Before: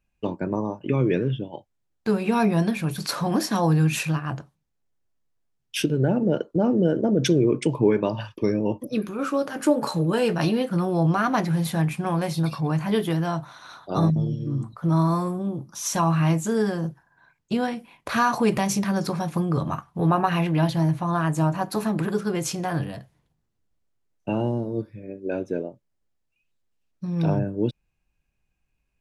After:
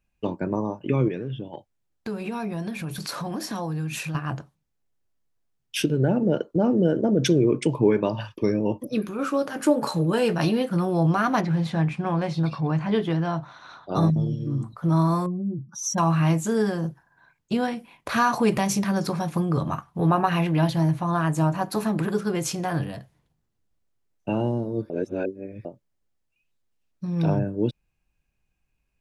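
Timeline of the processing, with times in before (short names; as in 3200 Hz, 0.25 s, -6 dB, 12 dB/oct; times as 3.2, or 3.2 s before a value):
1.08–4.15 compressor 3:1, threshold -29 dBFS
11.41–13.95 air absorption 120 m
15.26–15.98 spectral contrast raised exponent 2.1
24.9–25.65 reverse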